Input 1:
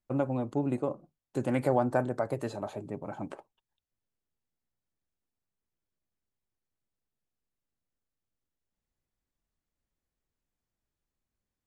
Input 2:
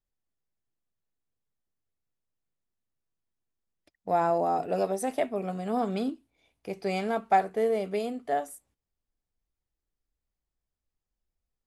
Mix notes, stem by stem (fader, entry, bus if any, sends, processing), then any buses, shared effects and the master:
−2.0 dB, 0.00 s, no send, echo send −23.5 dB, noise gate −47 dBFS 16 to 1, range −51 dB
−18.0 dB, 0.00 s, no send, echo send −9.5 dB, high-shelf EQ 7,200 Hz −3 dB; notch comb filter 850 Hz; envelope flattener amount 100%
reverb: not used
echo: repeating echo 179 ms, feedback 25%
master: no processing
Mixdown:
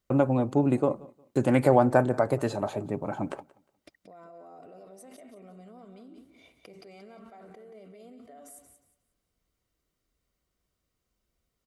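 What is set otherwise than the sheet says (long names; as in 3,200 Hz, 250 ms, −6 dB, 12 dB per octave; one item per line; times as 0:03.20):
stem 1 −2.0 dB → +6.5 dB
stem 2 −18.0 dB → −28.5 dB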